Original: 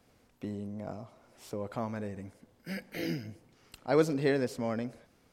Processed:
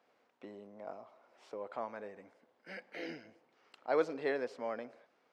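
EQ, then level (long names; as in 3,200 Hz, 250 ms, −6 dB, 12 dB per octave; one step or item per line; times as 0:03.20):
high-pass filter 560 Hz 12 dB per octave
head-to-tape spacing loss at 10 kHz 25 dB
+1.0 dB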